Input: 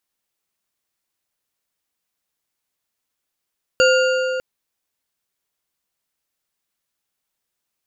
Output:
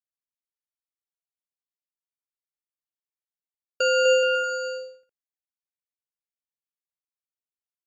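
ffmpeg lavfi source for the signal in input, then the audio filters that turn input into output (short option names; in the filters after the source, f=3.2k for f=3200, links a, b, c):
-f lavfi -i "aevalsrc='0.251*pow(10,-3*t/3.53)*sin(2*PI*516*t)+0.168*pow(10,-3*t/2.604)*sin(2*PI*1422.6*t)+0.112*pow(10,-3*t/2.128)*sin(2*PI*2788.5*t)+0.075*pow(10,-3*t/1.83)*sin(2*PI*4609.4*t)+0.0501*pow(10,-3*t/1.623)*sin(2*PI*6883.4*t)':d=0.6:s=44100"
-filter_complex "[0:a]agate=range=-29dB:threshold=-19dB:ratio=16:detection=peak,alimiter=limit=-13dB:level=0:latency=1:release=31,asplit=2[a][b];[b]aecho=0:1:250|425|547.5|633.2|693.3:0.631|0.398|0.251|0.158|0.1[c];[a][c]amix=inputs=2:normalize=0"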